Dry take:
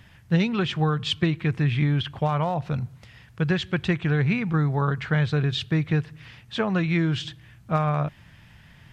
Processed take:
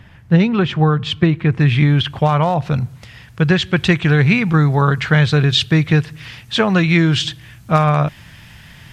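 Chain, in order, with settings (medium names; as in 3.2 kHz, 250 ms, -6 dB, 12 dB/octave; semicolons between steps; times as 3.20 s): treble shelf 3 kHz -10 dB, from 1.60 s +3 dB, from 3.77 s +8 dB; trim +9 dB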